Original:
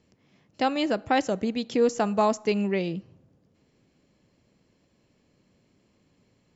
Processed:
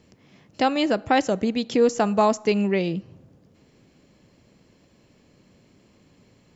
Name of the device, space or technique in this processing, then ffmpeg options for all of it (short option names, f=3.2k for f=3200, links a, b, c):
parallel compression: -filter_complex "[0:a]asplit=2[a][b];[b]acompressor=threshold=-40dB:ratio=6,volume=0dB[c];[a][c]amix=inputs=2:normalize=0,volume=2.5dB"